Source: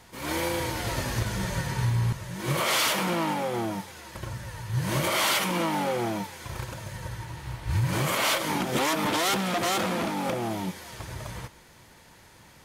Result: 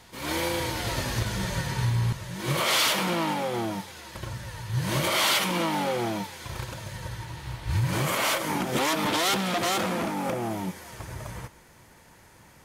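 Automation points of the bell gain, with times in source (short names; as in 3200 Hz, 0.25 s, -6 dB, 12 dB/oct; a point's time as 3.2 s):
bell 3800 Hz 0.99 oct
7.68 s +3.5 dB
8.5 s -4.5 dB
8.94 s +2.5 dB
9.6 s +2.5 dB
10.14 s -5 dB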